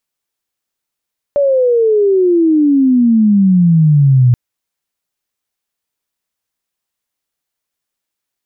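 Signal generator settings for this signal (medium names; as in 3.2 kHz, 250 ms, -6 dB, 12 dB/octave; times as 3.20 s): sweep logarithmic 580 Hz -> 120 Hz -8.5 dBFS -> -5 dBFS 2.98 s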